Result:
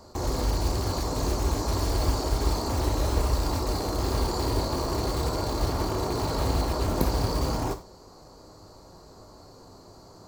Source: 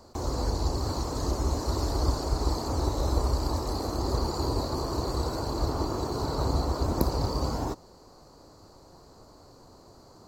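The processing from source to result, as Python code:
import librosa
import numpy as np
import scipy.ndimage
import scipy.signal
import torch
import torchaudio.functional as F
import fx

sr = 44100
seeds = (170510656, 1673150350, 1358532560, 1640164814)

p1 = (np.mod(10.0 ** (24.5 / 20.0) * x + 1.0, 2.0) - 1.0) / 10.0 ** (24.5 / 20.0)
p2 = x + (p1 * 10.0 ** (-10.0 / 20.0))
y = fx.rev_gated(p2, sr, seeds[0], gate_ms=120, shape='falling', drr_db=6.0)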